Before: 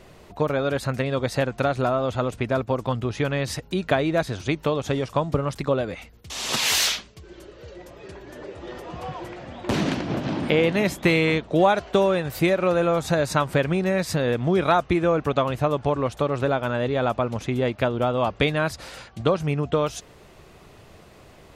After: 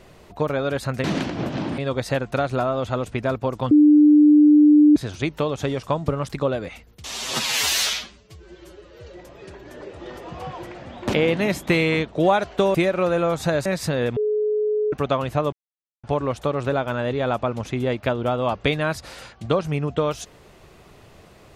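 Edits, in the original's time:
2.97–4.22 bleep 298 Hz -9 dBFS
6.37–7.66 stretch 1.5×
9.75–10.49 move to 1.04
12.1–12.39 cut
13.3–13.92 cut
14.43–15.19 bleep 424 Hz -18.5 dBFS
15.79 insert silence 0.51 s

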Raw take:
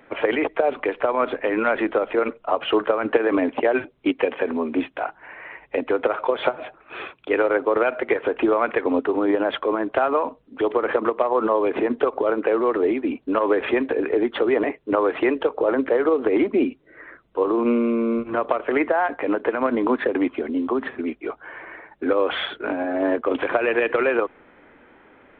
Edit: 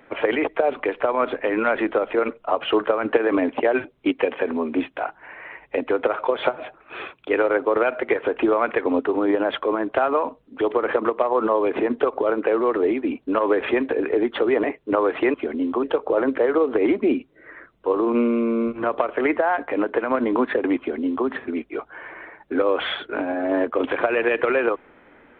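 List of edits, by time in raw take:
20.29–20.78 copy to 15.34

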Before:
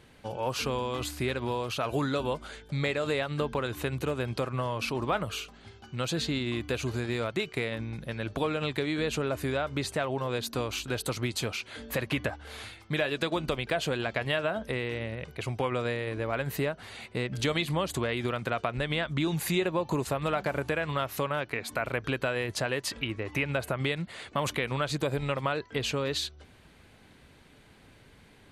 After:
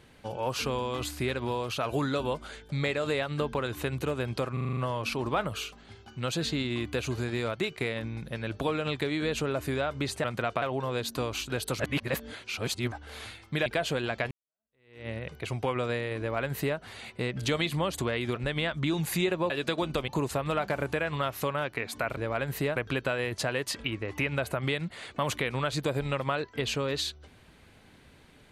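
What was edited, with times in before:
4.53 stutter 0.04 s, 7 plays
11.18–12.3 reverse
13.04–13.62 move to 19.84
14.27–15.05 fade in exponential
16.15–16.74 copy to 21.93
18.32–18.7 move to 10

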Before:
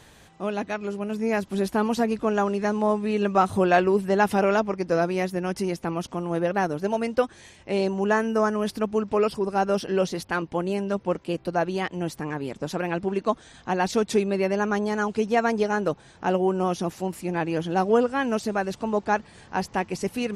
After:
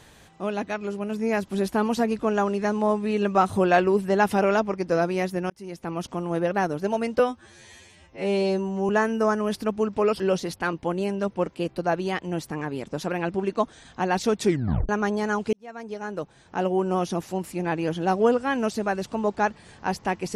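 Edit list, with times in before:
5.5–6.06 fade in
7.19–8.04 stretch 2×
9.35–9.89 cut
14.14 tape stop 0.44 s
15.22–16.6 fade in

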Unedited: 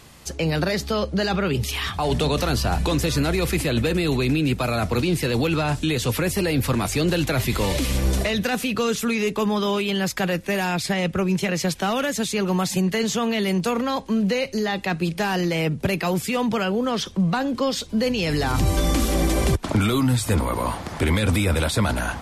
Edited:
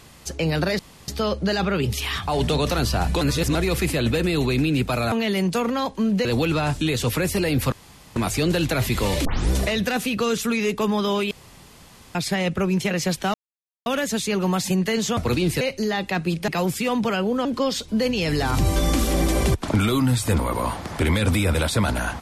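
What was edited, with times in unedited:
0.79 insert room tone 0.29 s
2.92–3.26 reverse
4.83–5.27 swap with 13.23–14.36
6.74 insert room tone 0.44 s
7.83 tape start 0.26 s
9.89–10.73 room tone
11.92 insert silence 0.52 s
15.23–15.96 cut
16.93–17.46 cut

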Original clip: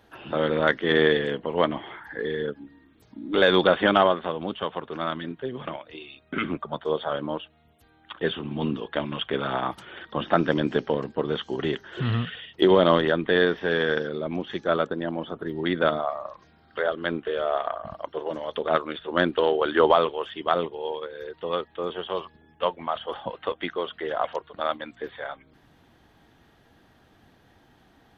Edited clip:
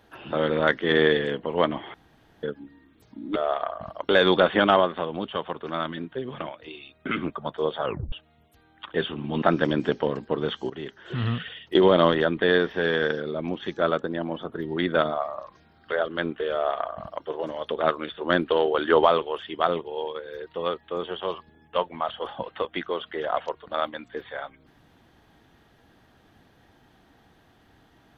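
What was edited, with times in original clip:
1.94–2.43 room tone
7.12 tape stop 0.27 s
8.69–10.29 cut
11.57–12.24 fade in, from -13.5 dB
17.4–18.13 copy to 3.36

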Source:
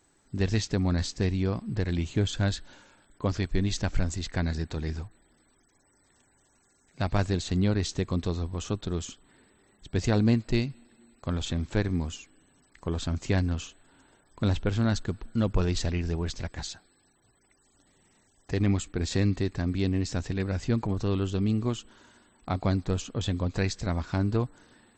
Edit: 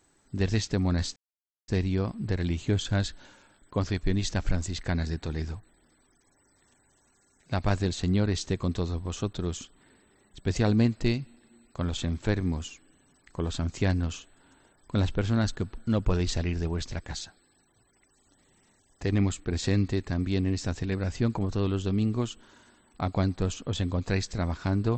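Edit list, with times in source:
1.16 insert silence 0.52 s

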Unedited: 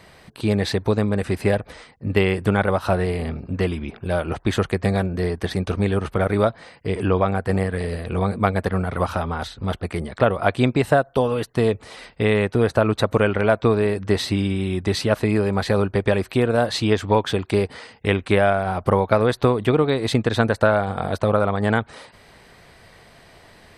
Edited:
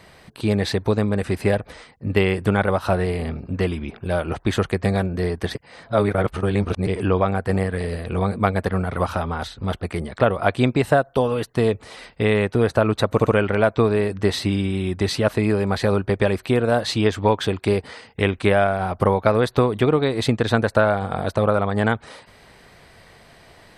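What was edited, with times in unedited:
5.55–6.87 reverse
13.12 stutter 0.07 s, 3 plays

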